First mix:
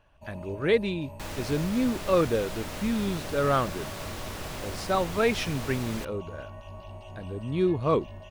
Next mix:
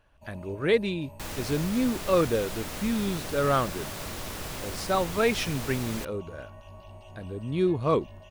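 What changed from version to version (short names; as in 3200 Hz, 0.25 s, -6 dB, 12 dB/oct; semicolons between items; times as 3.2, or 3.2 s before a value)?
first sound -4.0 dB; master: add high shelf 6800 Hz +6 dB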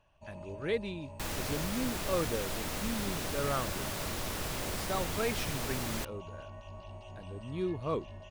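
speech -9.5 dB; first sound: add steep low-pass 8100 Hz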